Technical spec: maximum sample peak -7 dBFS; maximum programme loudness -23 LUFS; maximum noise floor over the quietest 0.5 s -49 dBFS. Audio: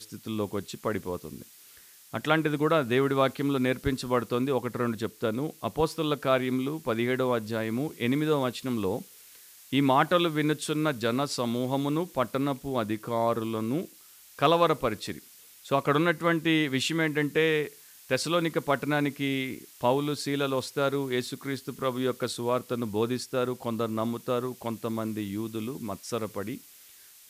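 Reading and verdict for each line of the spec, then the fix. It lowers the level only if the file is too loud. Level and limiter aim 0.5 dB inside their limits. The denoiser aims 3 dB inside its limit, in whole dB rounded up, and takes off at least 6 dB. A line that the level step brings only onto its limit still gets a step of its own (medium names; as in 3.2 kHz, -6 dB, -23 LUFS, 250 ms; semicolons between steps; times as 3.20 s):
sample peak -9.5 dBFS: pass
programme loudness -28.5 LUFS: pass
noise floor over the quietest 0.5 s -53 dBFS: pass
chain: none needed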